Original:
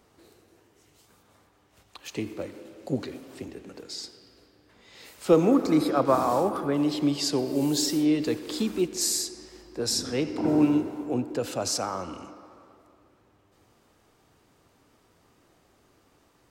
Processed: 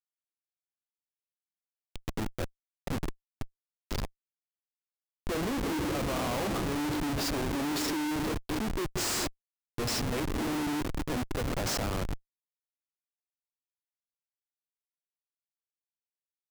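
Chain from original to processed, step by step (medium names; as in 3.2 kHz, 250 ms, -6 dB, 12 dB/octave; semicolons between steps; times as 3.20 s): peak limiter -17 dBFS, peak gain reduction 9.5 dB; Schmitt trigger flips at -30 dBFS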